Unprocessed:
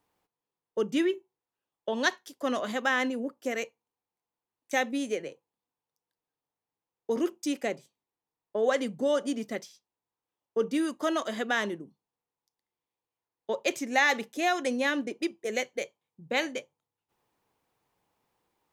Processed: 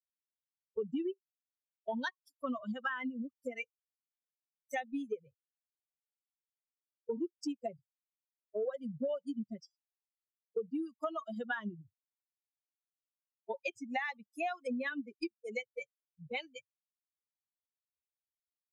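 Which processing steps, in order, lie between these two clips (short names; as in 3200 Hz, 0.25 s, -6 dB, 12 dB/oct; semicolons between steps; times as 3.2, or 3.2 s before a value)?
per-bin expansion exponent 3; compressor 20:1, threshold -40 dBFS, peak gain reduction 18 dB; treble ducked by the level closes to 2700 Hz, closed at -42.5 dBFS; gain +7.5 dB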